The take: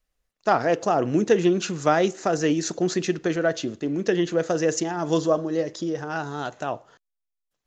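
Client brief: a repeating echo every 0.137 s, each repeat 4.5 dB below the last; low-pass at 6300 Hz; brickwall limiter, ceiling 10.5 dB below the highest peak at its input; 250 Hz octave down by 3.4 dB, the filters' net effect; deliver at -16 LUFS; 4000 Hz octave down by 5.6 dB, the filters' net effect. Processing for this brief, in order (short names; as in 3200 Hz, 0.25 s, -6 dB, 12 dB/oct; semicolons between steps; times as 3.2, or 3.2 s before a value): LPF 6300 Hz; bell 250 Hz -5.5 dB; bell 4000 Hz -7 dB; limiter -17.5 dBFS; feedback echo 0.137 s, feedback 60%, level -4.5 dB; gain +11.5 dB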